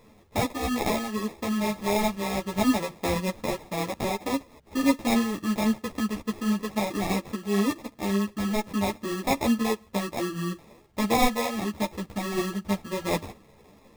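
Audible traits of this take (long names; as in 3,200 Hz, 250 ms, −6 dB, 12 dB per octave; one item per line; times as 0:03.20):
aliases and images of a low sample rate 1,500 Hz, jitter 0%
a shimmering, thickened sound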